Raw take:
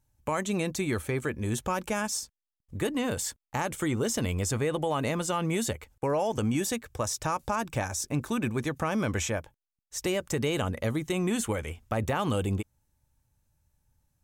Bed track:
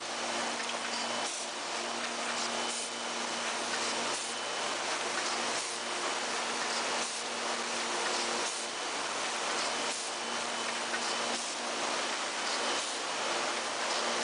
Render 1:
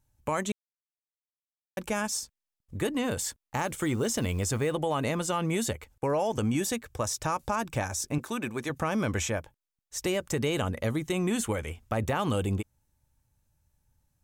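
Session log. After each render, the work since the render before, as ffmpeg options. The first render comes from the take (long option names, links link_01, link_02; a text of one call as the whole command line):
ffmpeg -i in.wav -filter_complex "[0:a]asettb=1/sr,asplit=3[link_01][link_02][link_03];[link_01]atrim=end=3.284[link_04];[link_02]atrim=start=3.28:end=4.73,asetpts=PTS-STARTPTS,afade=type=in:duration=0.004:curve=qsin,afade=type=out:start_time=1.446:duration=0.004:curve=qsin,acrusher=bits=8:mode=log:mix=0:aa=0.000001[link_05];[link_03]atrim=start=4.726[link_06];[link_04][link_05]acrossfade=duration=0.004:curve1=hsin:curve2=qsin[link_07];[link_07][link_06]acrossfade=duration=0.004:curve1=qsin:curve2=hsin,asettb=1/sr,asplit=3[link_08][link_09][link_10];[link_08]atrim=end=8.184[link_11];[link_09]atrim=start=8.18:end=8.7,asetpts=PTS-STARTPTS,afade=type=in:duration=0.004:curve=qsin,afade=type=out:start_time=0.516:duration=0.004:curve=qsin,highpass=frequency=330:poles=1[link_12];[link_10]atrim=start=8.696[link_13];[link_11][link_12]acrossfade=duration=0.004:curve1=hsin:curve2=qsin[link_14];[link_14][link_13]acrossfade=duration=0.004:curve1=qsin:curve2=hsin,asplit=3[link_15][link_16][link_17];[link_15]atrim=end=0.52,asetpts=PTS-STARTPTS,afade=type=out:start_time=0.516:duration=0.004:curve=hsin[link_18];[link_16]atrim=start=0.52:end=1.77,asetpts=PTS-STARTPTS,volume=0[link_19];[link_17]atrim=start=1.77,asetpts=PTS-STARTPTS,afade=type=in:duration=0.004:curve=hsin[link_20];[link_18][link_19][link_20]concat=n=3:v=0:a=1" out.wav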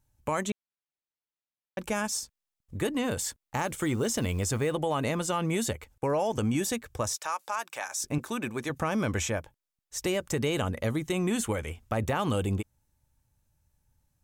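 ffmpeg -i in.wav -filter_complex "[0:a]asettb=1/sr,asplit=3[link_01][link_02][link_03];[link_01]atrim=end=0.504[link_04];[link_02]atrim=start=0.5:end=1.79,asetpts=PTS-STARTPTS,afade=type=in:duration=0.004:curve=qsin,afade=type=out:start_time=1.286:duration=0.004:curve=qsin,lowpass=4000[link_05];[link_03]atrim=start=1.786[link_06];[link_04][link_05]acrossfade=duration=0.004:curve1=hsin:curve2=qsin[link_07];[link_07][link_06]acrossfade=duration=0.004:curve1=qsin:curve2=hsin,asettb=1/sr,asplit=3[link_08][link_09][link_10];[link_08]atrim=end=7.164[link_11];[link_09]atrim=start=7.16:end=8.03,asetpts=PTS-STARTPTS,afade=type=in:duration=0.004:curve=qsin,afade=type=out:start_time=0.866:duration=0.004:curve=qsin,highpass=850[link_12];[link_10]atrim=start=8.026[link_13];[link_11][link_12]acrossfade=duration=0.004:curve1=hsin:curve2=qsin[link_14];[link_14][link_13]acrossfade=duration=0.004:curve1=qsin:curve2=hsin" out.wav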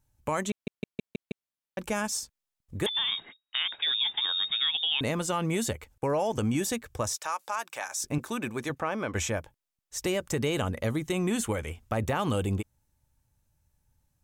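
ffmpeg -i in.wav -filter_complex "[0:a]asettb=1/sr,asplit=3[link_01][link_02][link_03];[link_01]atrim=end=2.864[link_04];[link_02]atrim=start=2.86:end=5.01,asetpts=PTS-STARTPTS,afade=type=in:duration=0.004:curve=qsin,afade=type=out:start_time=2.146:duration=0.004:curve=qsin,lowpass=frequency=3200:width_type=q:width=0.5098,lowpass=frequency=3200:width_type=q:width=0.6013,lowpass=frequency=3200:width_type=q:width=0.9,lowpass=frequency=3200:width_type=q:width=2.563,afreqshift=-3800[link_05];[link_03]atrim=start=5.006[link_06];[link_04][link_05]acrossfade=duration=0.004:curve1=hsin:curve2=qsin[link_07];[link_07][link_06]acrossfade=duration=0.004:curve1=qsin:curve2=hsin,asplit=3[link_08][link_09][link_10];[link_08]afade=type=out:start_time=8.74:duration=0.02[link_11];[link_09]bass=frequency=250:gain=-11,treble=frequency=4000:gain=-12,afade=type=in:start_time=8.74:duration=0.02,afade=type=out:start_time=9.14:duration=0.02[link_12];[link_10]afade=type=in:start_time=9.14:duration=0.02[link_13];[link_11][link_12][link_13]amix=inputs=3:normalize=0,asplit=7[link_14][link_15][link_16][link_17][link_18][link_19][link_20];[link_14]atrim=end=0.672[link_21];[link_15]atrim=start=0.508:end=0.672[link_22];[link_16]atrim=start=0.508:end=0.672[link_23];[link_17]atrim=start=0.508:end=0.672[link_24];[link_18]atrim=start=0.508:end=0.672[link_25];[link_19]atrim=start=0.508:end=0.672[link_26];[link_20]atrim=start=1.468[link_27];[link_21][link_22]acrossfade=duration=0.004:curve1=hsin:curve2=hsin[link_28];[link_28][link_23]acrossfade=duration=0.004:curve1=hsin:curve2=hsin[link_29];[link_29][link_24]acrossfade=duration=0.004:curve1=hsin:curve2=hsin[link_30];[link_30][link_25]acrossfade=duration=0.004:curve1=hsin:curve2=hsin[link_31];[link_31][link_26]acrossfade=duration=0.004:curve1=hsin:curve2=hsin[link_32];[link_32][link_27]acrossfade=duration=0.004:curve1=hsin:curve2=hsin" out.wav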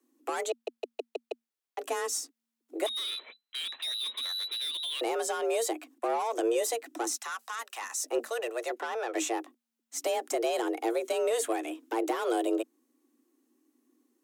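ffmpeg -i in.wav -filter_complex "[0:a]acrossover=split=110|490|6100[link_01][link_02][link_03][link_04];[link_03]asoftclip=type=tanh:threshold=-33dB[link_05];[link_01][link_02][link_05][link_04]amix=inputs=4:normalize=0,afreqshift=230" out.wav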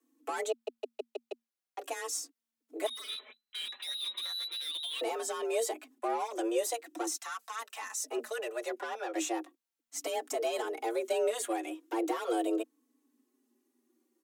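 ffmpeg -i in.wav -filter_complex "[0:a]asplit=2[link_01][link_02];[link_02]adelay=4,afreqshift=-0.4[link_03];[link_01][link_03]amix=inputs=2:normalize=1" out.wav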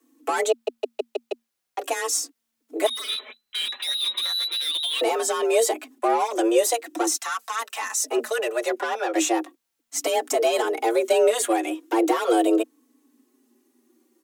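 ffmpeg -i in.wav -af "volume=11.5dB" out.wav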